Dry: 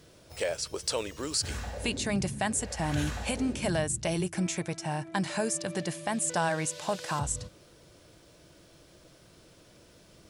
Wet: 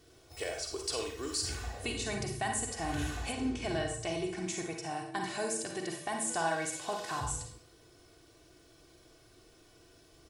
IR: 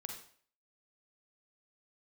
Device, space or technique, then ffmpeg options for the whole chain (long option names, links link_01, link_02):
microphone above a desk: -filter_complex "[0:a]aecho=1:1:2.7:0.67[link_01];[1:a]atrim=start_sample=2205[link_02];[link_01][link_02]afir=irnorm=-1:irlink=0,asettb=1/sr,asplit=3[link_03][link_04][link_05];[link_03]atrim=end=3.324[link_06];[link_04]atrim=start=3.32:end=4.48,asetpts=PTS-STARTPTS,afade=type=in:duration=0.004:curve=qsin,afade=type=out:start_time=1.156:duration=0.004:curve=qsin,lowpass=6400[link_07];[link_05]atrim=start=4.476[link_08];[link_06][link_07]acrossfade=duration=0.004:curve1=hsin:curve2=qsin[link_09];[link_09][link_08]acrossfade=duration=0.004:curve1=qsin:curve2=hsin,volume=-2.5dB"